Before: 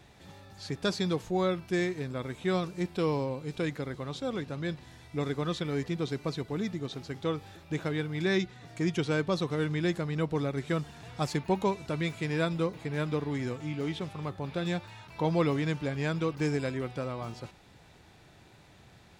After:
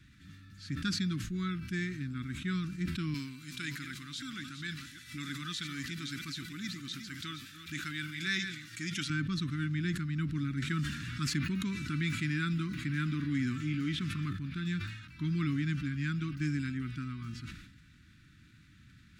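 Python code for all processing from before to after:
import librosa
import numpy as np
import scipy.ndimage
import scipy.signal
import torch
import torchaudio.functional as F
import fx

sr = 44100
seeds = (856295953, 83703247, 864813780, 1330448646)

y = fx.chain(x, sr, fx.reverse_delay(ms=308, wet_db=-10.0),
    fx.tilt_eq(slope=3.5),
    fx.pre_swell(db_per_s=120.0), at=(3.14, 9.1))
y = fx.chain(y, sr, fx.low_shelf(hz=110.0, db=-9.5),
    fx.env_flatten(amount_pct=50), at=(10.62, 14.33))
y = scipy.signal.sosfilt(scipy.signal.ellip(3, 1.0, 50, [280.0, 1400.0], 'bandstop', fs=sr, output='sos'), y)
y = fx.high_shelf(y, sr, hz=2800.0, db=-7.5)
y = fx.sustainer(y, sr, db_per_s=60.0)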